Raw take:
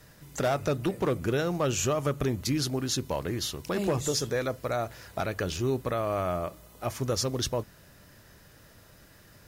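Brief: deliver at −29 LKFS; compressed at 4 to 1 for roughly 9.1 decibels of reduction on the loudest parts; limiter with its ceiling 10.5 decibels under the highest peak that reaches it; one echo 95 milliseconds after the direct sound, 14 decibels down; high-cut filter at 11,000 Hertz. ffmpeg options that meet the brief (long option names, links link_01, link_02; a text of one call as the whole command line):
ffmpeg -i in.wav -af "lowpass=11000,acompressor=threshold=-34dB:ratio=4,alimiter=level_in=8.5dB:limit=-24dB:level=0:latency=1,volume=-8.5dB,aecho=1:1:95:0.2,volume=12.5dB" out.wav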